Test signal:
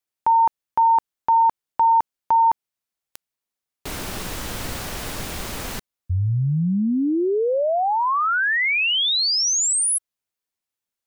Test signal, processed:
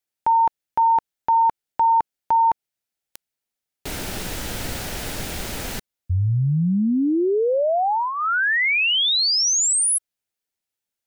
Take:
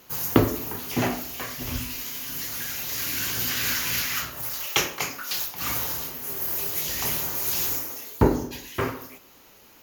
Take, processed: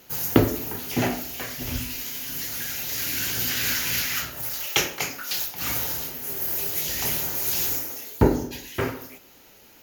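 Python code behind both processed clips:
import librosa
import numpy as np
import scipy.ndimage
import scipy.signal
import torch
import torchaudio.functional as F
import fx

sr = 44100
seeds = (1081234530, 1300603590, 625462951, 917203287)

y = fx.peak_eq(x, sr, hz=1100.0, db=-8.5, octaves=0.27)
y = y * librosa.db_to_amplitude(1.0)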